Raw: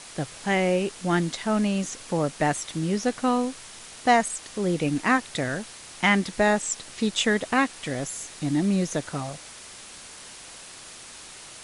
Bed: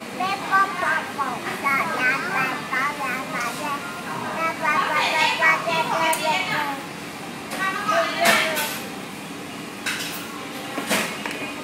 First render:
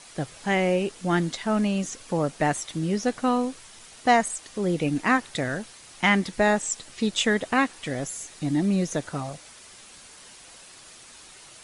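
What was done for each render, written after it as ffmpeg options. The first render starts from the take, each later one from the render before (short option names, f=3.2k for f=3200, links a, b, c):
-af "afftdn=nr=6:nf=-44"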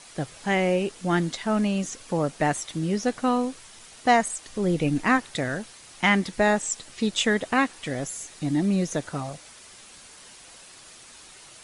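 -filter_complex "[0:a]asettb=1/sr,asplit=3[a][b][c];[a]atrim=end=4.464[d];[b]atrim=start=4.46:end=5.19,asetpts=PTS-STARTPTS,afade=t=in:d=0.004:c=qsin,afade=t=out:st=0.726:d=0.004:c=qsin,lowshelf=f=82:g=11.5[e];[c]atrim=start=5.186[f];[d][e]acrossfade=d=0.004:c1=hsin:c2=qsin[g];[g][f]acrossfade=d=0.004:c1=qsin:c2=hsin"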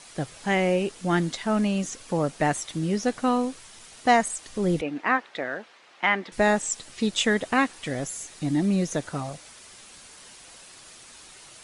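-filter_complex "[0:a]asettb=1/sr,asplit=3[a][b][c];[a]atrim=end=4.814[d];[b]atrim=start=4.81:end=6.32,asetpts=PTS-STARTPTS,afade=t=in:d=0.004:c=qsin,afade=t=out:st=1.506:d=0.004:c=qsin,highpass=400,lowpass=2.7k[e];[c]atrim=start=6.316[f];[d][e]acrossfade=d=0.004:c1=hsin:c2=qsin[g];[g][f]acrossfade=d=0.004:c1=qsin:c2=hsin"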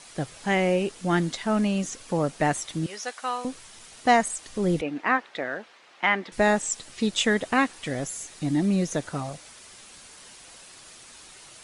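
-filter_complex "[0:a]asettb=1/sr,asplit=3[a][b][c];[a]atrim=end=2.864[d];[b]atrim=start=2.86:end=3.45,asetpts=PTS-STARTPTS,afade=t=in:d=0.004:c=qsin,afade=t=out:st=0.586:d=0.004:c=qsin,highpass=860[e];[c]atrim=start=3.446[f];[d][e]acrossfade=d=0.004:c1=hsin:c2=qsin[g];[g][f]acrossfade=d=0.004:c1=qsin:c2=hsin"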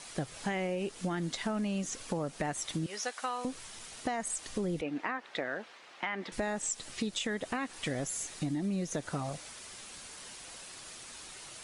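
-af "alimiter=limit=-17.5dB:level=0:latency=1:release=98,acompressor=threshold=-31dB:ratio=6"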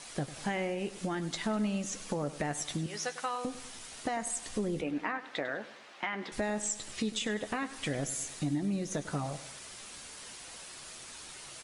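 -filter_complex "[0:a]asplit=2[a][b];[b]adelay=14,volume=-11dB[c];[a][c]amix=inputs=2:normalize=0,aecho=1:1:100|200|300|400|500:0.178|0.0871|0.0427|0.0209|0.0103"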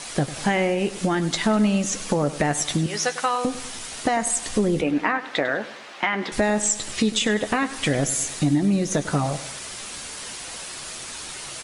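-af "volume=12dB"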